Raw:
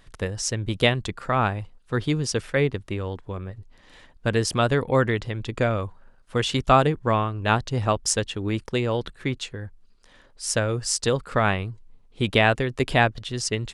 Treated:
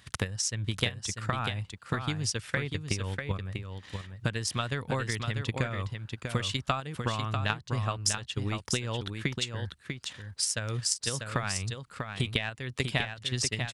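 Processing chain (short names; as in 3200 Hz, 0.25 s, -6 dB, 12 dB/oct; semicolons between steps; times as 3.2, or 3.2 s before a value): HPF 75 Hz 24 dB/oct; bell 440 Hz -12 dB 2.7 oct; in parallel at +2 dB: level quantiser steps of 12 dB; on the sum: transient shaper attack +10 dB, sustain -2 dB; compressor 6:1, threshold -28 dBFS, peak gain reduction 22 dB; on a send: echo 0.644 s -6 dB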